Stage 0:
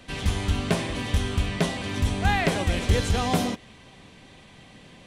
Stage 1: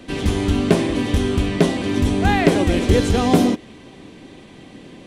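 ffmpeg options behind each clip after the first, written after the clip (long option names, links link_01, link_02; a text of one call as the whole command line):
ffmpeg -i in.wav -af "equalizer=frequency=320:width_type=o:width=1.2:gain=12.5,volume=3dB" out.wav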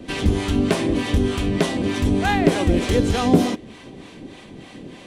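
ffmpeg -i in.wav -filter_complex "[0:a]asplit=2[link_01][link_02];[link_02]acompressor=threshold=-23dB:ratio=6,volume=0dB[link_03];[link_01][link_03]amix=inputs=2:normalize=0,acrossover=split=620[link_04][link_05];[link_04]aeval=exprs='val(0)*(1-0.7/2+0.7/2*cos(2*PI*3.3*n/s))':channel_layout=same[link_06];[link_05]aeval=exprs='val(0)*(1-0.7/2-0.7/2*cos(2*PI*3.3*n/s))':channel_layout=same[link_07];[link_06][link_07]amix=inputs=2:normalize=0,volume=-1dB" out.wav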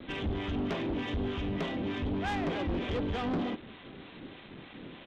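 ffmpeg -i in.wav -af "aresample=8000,acrusher=bits=6:mix=0:aa=0.000001,aresample=44100,asoftclip=type=tanh:threshold=-19.5dB,volume=-8.5dB" out.wav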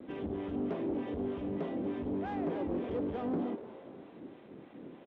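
ffmpeg -i in.wav -filter_complex "[0:a]bandpass=frequency=370:width_type=q:width=0.84:csg=0,asplit=4[link_01][link_02][link_03][link_04];[link_02]adelay=242,afreqshift=140,volume=-15dB[link_05];[link_03]adelay=484,afreqshift=280,volume=-23.9dB[link_06];[link_04]adelay=726,afreqshift=420,volume=-32.7dB[link_07];[link_01][link_05][link_06][link_07]amix=inputs=4:normalize=0" out.wav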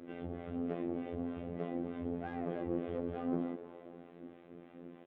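ffmpeg -i in.wav -af "asuperstop=centerf=940:order=4:qfactor=7.5,bass=frequency=250:gain=-1,treble=frequency=4000:gain=-10,afftfilt=real='hypot(re,im)*cos(PI*b)':imag='0':win_size=2048:overlap=0.75,volume=1dB" out.wav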